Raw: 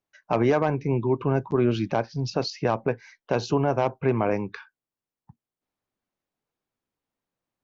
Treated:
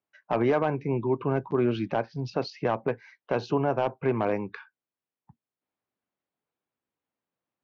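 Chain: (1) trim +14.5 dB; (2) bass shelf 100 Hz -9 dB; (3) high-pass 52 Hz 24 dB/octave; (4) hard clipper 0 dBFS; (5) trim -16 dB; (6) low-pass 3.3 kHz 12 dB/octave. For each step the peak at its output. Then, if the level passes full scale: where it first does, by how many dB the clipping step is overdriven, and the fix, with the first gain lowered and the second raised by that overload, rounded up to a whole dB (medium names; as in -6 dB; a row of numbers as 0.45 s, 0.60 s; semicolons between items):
+4.5 dBFS, +4.0 dBFS, +5.0 dBFS, 0.0 dBFS, -16.0 dBFS, -15.5 dBFS; step 1, 5.0 dB; step 1 +9.5 dB, step 5 -11 dB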